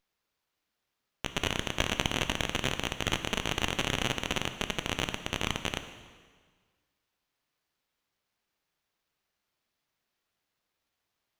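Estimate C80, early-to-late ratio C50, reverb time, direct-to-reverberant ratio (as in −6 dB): 11.5 dB, 10.0 dB, 1.6 s, 8.5 dB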